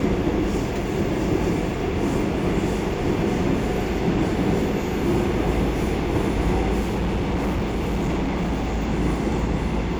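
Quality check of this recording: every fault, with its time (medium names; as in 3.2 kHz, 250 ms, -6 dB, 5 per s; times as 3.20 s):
6.79–8.83 s: clipped -19.5 dBFS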